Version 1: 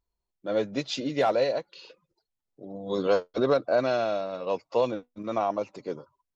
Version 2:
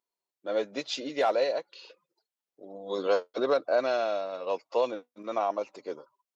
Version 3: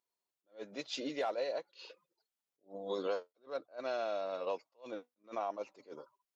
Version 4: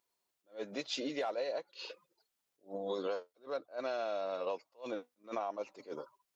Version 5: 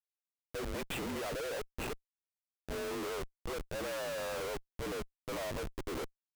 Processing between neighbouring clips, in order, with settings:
high-pass filter 360 Hz 12 dB per octave; level −1 dB
downward compressor 4 to 1, threshold −32 dBFS, peak gain reduction 10.5 dB; level that may rise only so fast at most 260 dB per second; level −1.5 dB
downward compressor 2.5 to 1, threshold −43 dBFS, peak gain reduction 8.5 dB; level +6.5 dB
single-sideband voice off tune −57 Hz 340–2,800 Hz; comparator with hysteresis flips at −50 dBFS; level +3.5 dB

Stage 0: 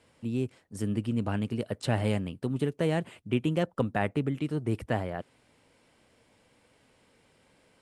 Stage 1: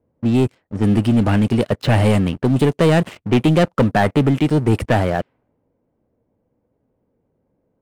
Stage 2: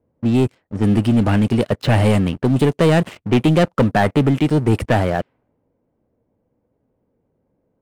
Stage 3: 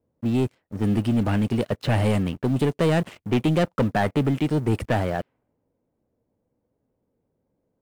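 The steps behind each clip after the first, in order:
low-pass that shuts in the quiet parts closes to 500 Hz, open at −26.5 dBFS; leveller curve on the samples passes 3; level +5.5 dB
no processing that can be heard
one scale factor per block 7 bits; level −6.5 dB

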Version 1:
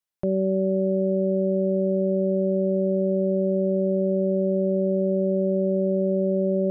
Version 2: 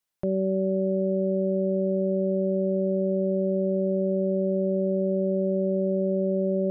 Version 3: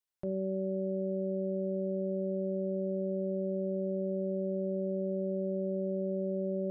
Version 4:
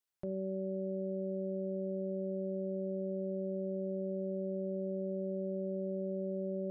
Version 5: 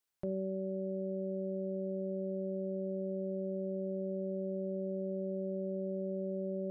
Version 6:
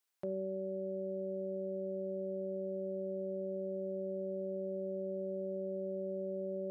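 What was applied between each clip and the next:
brickwall limiter −23 dBFS, peak gain reduction 6.5 dB; level +4.5 dB
hum removal 59.34 Hz, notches 30; level −8.5 dB
brickwall limiter −30.5 dBFS, peak gain reduction 4 dB
speech leveller 0.5 s
high-pass filter 410 Hz 6 dB per octave; level +2 dB

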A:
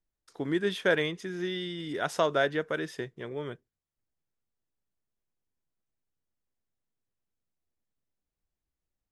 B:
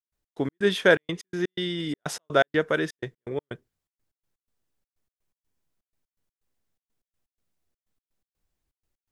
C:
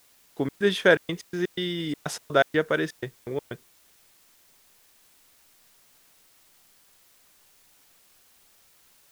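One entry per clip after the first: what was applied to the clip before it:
gate pattern ".x.x.xxx" 124 BPM −60 dB; level +7 dB
background noise white −61 dBFS; bit reduction 10 bits

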